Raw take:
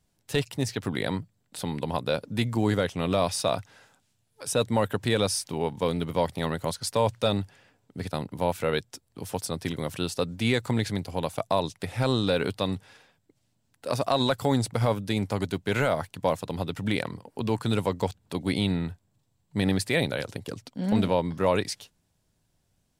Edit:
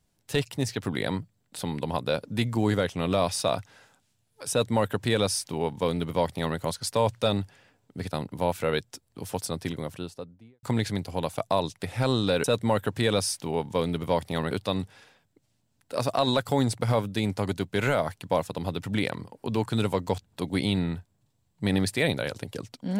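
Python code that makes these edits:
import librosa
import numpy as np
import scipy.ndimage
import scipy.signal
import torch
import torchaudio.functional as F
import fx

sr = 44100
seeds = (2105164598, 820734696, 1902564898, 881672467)

y = fx.studio_fade_out(x, sr, start_s=9.47, length_s=1.16)
y = fx.edit(y, sr, fx.duplicate(start_s=4.51, length_s=2.07, to_s=12.44), tone=tone)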